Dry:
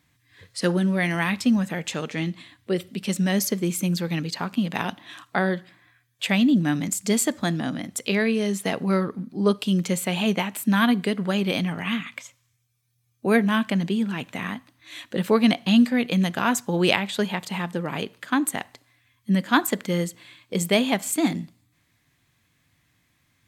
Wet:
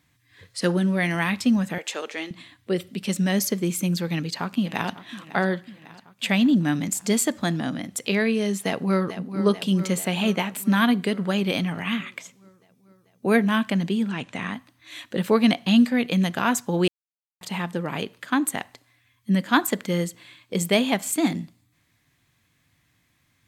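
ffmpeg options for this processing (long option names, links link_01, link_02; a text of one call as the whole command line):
ffmpeg -i in.wav -filter_complex "[0:a]asettb=1/sr,asplit=3[link_01][link_02][link_03];[link_01]atrim=end=1.784[link_04];[link_02]atrim=start=1.78:end=2.31,asetpts=PTS-STARTPTS,afade=type=in:duration=0.004:curve=qsin,afade=type=out:start_time=0.526:duration=0.004:curve=qsin,highpass=frequency=350:width=0.5412,highpass=frequency=350:width=1.3066[link_05];[link_03]atrim=start=2.306[link_06];[link_04][link_05]acrossfade=duration=0.004:curve1=hsin:curve2=qsin[link_07];[link_07][link_06]acrossfade=duration=0.004:curve1=qsin:curve2=hsin,asplit=2[link_08][link_09];[link_09]afade=type=in:start_time=4.07:duration=0.01,afade=type=out:start_time=5.03:duration=0.01,aecho=0:1:550|1100|1650|2200|2750|3300|3850:0.149624|0.0972553|0.063216|0.0410904|0.0267087|0.0173607|0.0112844[link_10];[link_08][link_10]amix=inputs=2:normalize=0,asplit=2[link_11][link_12];[link_12]afade=type=in:start_time=8.63:duration=0.01,afade=type=out:start_time=9.4:duration=0.01,aecho=0:1:440|880|1320|1760|2200|2640|3080|3520|3960|4400:0.281838|0.197287|0.138101|0.0966705|0.0676694|0.0473686|0.033158|0.0232106|0.0162474|0.0113732[link_13];[link_11][link_13]amix=inputs=2:normalize=0,asettb=1/sr,asplit=3[link_14][link_15][link_16];[link_14]atrim=end=14.094[link_17];[link_15]atrim=start=14.09:end=14.54,asetpts=PTS-STARTPTS,afade=type=in:duration=0.004:curve=qsin,afade=type=out:start_time=0.446:duration=0.004:curve=qsin,lowpass=frequency=9100:width=0.5412,lowpass=frequency=9100:width=1.3066[link_18];[link_16]atrim=start=14.536[link_19];[link_17][link_18]acrossfade=duration=0.004:curve1=hsin:curve2=qsin[link_20];[link_20][link_19]acrossfade=duration=0.004:curve1=qsin:curve2=hsin,asplit=3[link_21][link_22][link_23];[link_21]atrim=end=16.88,asetpts=PTS-STARTPTS,afade=type=out:start_time=16.876:duration=0.004:curve=hsin[link_24];[link_22]atrim=start=16.88:end=17.41,asetpts=PTS-STARTPTS,volume=0[link_25];[link_23]atrim=start=17.41,asetpts=PTS-STARTPTS,afade=type=in:duration=0.004:curve=hsin[link_26];[link_24][link_25][link_26]concat=n=3:v=0:a=1" out.wav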